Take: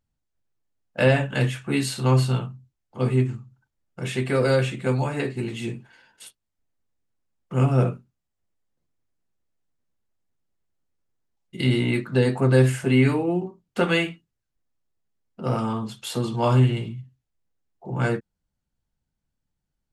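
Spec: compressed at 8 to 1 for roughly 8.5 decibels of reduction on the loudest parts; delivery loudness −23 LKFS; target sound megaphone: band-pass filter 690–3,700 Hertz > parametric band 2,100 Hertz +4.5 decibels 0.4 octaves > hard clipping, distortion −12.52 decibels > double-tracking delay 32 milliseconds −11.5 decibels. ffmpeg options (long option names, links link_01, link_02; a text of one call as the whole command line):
ffmpeg -i in.wav -filter_complex "[0:a]acompressor=threshold=-21dB:ratio=8,highpass=690,lowpass=3700,equalizer=frequency=2100:width_type=o:width=0.4:gain=4.5,asoftclip=type=hard:threshold=-27dB,asplit=2[link_01][link_02];[link_02]adelay=32,volume=-11.5dB[link_03];[link_01][link_03]amix=inputs=2:normalize=0,volume=12dB" out.wav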